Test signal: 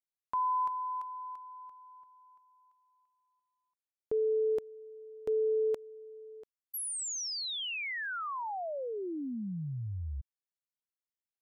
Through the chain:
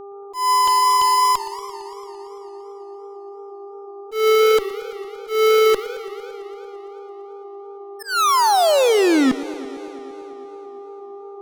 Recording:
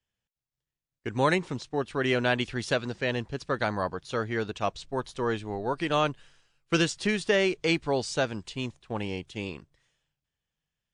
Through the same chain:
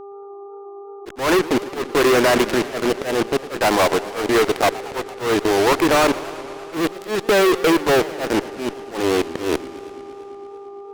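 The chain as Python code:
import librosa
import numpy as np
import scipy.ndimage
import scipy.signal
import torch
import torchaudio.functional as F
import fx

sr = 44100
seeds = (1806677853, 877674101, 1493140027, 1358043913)

y = scipy.signal.sosfilt(scipy.signal.cheby1(3, 1.0, 320.0, 'highpass', fs=sr, output='sos'), x)
y = fx.level_steps(y, sr, step_db=15)
y = scipy.signal.sosfilt(scipy.signal.butter(2, 1200.0, 'lowpass', fs=sr, output='sos'), y)
y = fx.fuzz(y, sr, gain_db=60.0, gate_db=-50.0)
y = fx.dmg_buzz(y, sr, base_hz=400.0, harmonics=3, level_db=-37.0, tilt_db=-8, odd_only=False)
y = fx.auto_swell(y, sr, attack_ms=176.0)
y = fx.echo_warbled(y, sr, ms=113, feedback_pct=79, rate_hz=2.8, cents=213, wet_db=-17)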